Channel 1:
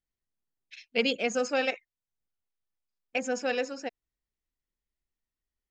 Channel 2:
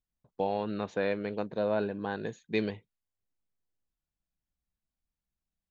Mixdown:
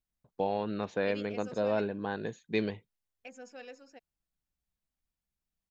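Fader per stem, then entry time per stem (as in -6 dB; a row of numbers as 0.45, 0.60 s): -18.0, -0.5 dB; 0.10, 0.00 s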